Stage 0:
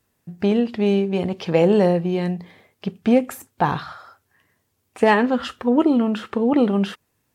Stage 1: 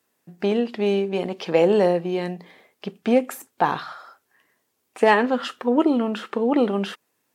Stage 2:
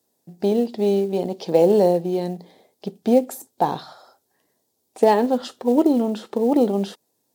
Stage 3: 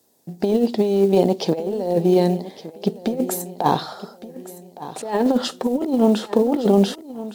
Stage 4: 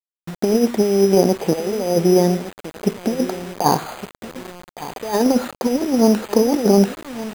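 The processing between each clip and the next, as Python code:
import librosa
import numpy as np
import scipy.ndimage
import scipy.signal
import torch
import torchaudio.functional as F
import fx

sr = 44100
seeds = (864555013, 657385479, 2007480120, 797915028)

y1 = scipy.signal.sosfilt(scipy.signal.butter(2, 270.0, 'highpass', fs=sr, output='sos'), x)
y2 = fx.band_shelf(y1, sr, hz=1800.0, db=-13.5, octaves=1.7)
y2 = fx.quant_float(y2, sr, bits=4)
y2 = y2 * librosa.db_to_amplitude(2.0)
y3 = fx.over_compress(y2, sr, threshold_db=-21.0, ratio=-0.5)
y3 = fx.echo_feedback(y3, sr, ms=1163, feedback_pct=36, wet_db=-15.5)
y3 = y3 * librosa.db_to_amplitude(4.5)
y4 = np.repeat(scipy.signal.resample_poly(y3, 1, 8), 8)[:len(y3)]
y4 = fx.quant_dither(y4, sr, seeds[0], bits=6, dither='none')
y4 = y4 * librosa.db_to_amplitude(2.0)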